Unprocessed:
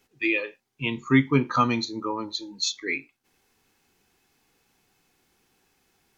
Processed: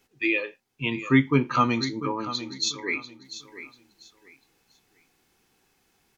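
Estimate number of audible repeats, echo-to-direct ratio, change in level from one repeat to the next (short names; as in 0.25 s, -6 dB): 2, -12.5 dB, -12.0 dB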